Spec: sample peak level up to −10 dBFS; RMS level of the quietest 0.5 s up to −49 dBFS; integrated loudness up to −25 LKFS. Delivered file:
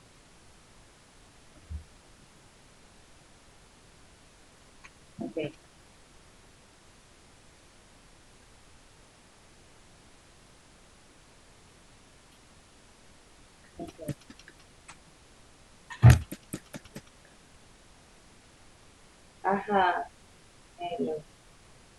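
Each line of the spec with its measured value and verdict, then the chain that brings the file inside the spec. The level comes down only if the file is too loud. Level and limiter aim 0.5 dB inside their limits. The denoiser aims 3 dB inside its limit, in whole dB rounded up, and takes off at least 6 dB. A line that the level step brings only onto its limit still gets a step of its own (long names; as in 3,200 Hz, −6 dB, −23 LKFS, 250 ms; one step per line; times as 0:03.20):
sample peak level −3.5 dBFS: out of spec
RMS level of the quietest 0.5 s −57 dBFS: in spec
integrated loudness −29.0 LKFS: in spec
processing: brickwall limiter −10.5 dBFS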